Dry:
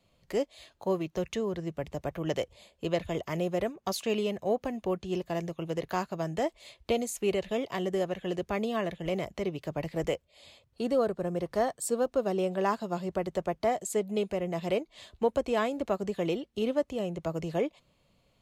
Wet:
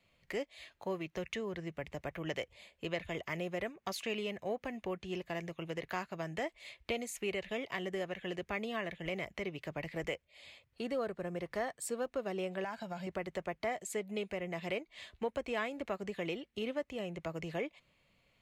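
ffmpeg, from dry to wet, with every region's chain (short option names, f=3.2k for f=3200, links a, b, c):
-filter_complex "[0:a]asettb=1/sr,asplit=3[a][b][c];[a]atrim=end=12.644[d];[b]atrim=start=12.64:end=13.07,asetpts=PTS-STARTPTS,afade=t=in:d=0.004:c=qsin,afade=t=out:st=0.426:d=0.004:c=qsin,aecho=1:1:1.3:0.62,atrim=end_sample=18963,acompressor=threshold=-31dB:ratio=4:attack=3.2:release=140:knee=1:detection=peak[e];[c]atrim=start=13.066[f];[d][e]acrossfade=d=0.004:c1=hsin:c2=qsin[g];[g][f]acrossfade=d=0.004:c1=qsin:c2=hsin,equalizer=f=2.1k:t=o:w=1.1:g=11.5,acompressor=threshold=-33dB:ratio=1.5,volume=-6dB"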